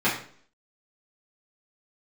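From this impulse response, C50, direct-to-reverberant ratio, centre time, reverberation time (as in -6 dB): 6.5 dB, -10.5 dB, 32 ms, 0.50 s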